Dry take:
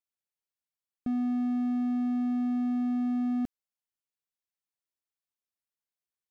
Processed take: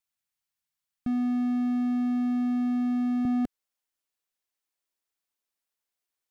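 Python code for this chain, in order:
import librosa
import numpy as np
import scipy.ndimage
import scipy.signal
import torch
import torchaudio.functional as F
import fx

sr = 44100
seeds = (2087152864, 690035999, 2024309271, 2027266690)

y = fx.peak_eq(x, sr, hz=fx.steps((0.0, 440.0), (3.25, 120.0)), db=-13.5, octaves=1.0)
y = y * librosa.db_to_amplitude(6.0)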